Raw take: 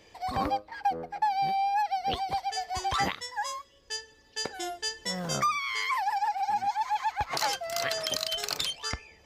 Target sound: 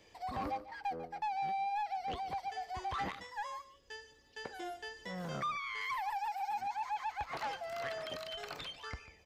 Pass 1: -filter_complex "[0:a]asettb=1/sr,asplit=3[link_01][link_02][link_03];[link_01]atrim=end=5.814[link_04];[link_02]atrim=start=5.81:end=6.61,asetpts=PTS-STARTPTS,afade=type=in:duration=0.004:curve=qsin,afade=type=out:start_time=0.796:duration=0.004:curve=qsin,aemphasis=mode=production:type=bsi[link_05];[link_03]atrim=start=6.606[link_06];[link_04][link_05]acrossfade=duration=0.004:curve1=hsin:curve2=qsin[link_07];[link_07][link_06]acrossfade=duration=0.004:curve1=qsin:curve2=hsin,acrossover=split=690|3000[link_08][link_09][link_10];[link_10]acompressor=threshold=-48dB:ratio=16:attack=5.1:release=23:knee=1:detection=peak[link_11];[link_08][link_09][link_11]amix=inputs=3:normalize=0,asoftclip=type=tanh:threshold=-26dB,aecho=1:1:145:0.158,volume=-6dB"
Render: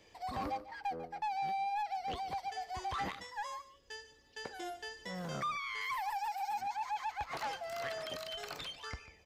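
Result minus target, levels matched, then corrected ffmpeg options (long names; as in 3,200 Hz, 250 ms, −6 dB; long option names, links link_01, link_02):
downward compressor: peak gain reduction −6 dB
-filter_complex "[0:a]asettb=1/sr,asplit=3[link_01][link_02][link_03];[link_01]atrim=end=5.814[link_04];[link_02]atrim=start=5.81:end=6.61,asetpts=PTS-STARTPTS,afade=type=in:duration=0.004:curve=qsin,afade=type=out:start_time=0.796:duration=0.004:curve=qsin,aemphasis=mode=production:type=bsi[link_05];[link_03]atrim=start=6.606[link_06];[link_04][link_05]acrossfade=duration=0.004:curve1=hsin:curve2=qsin[link_07];[link_07][link_06]acrossfade=duration=0.004:curve1=qsin:curve2=hsin,acrossover=split=690|3000[link_08][link_09][link_10];[link_10]acompressor=threshold=-54.5dB:ratio=16:attack=5.1:release=23:knee=1:detection=peak[link_11];[link_08][link_09][link_11]amix=inputs=3:normalize=0,asoftclip=type=tanh:threshold=-26dB,aecho=1:1:145:0.158,volume=-6dB"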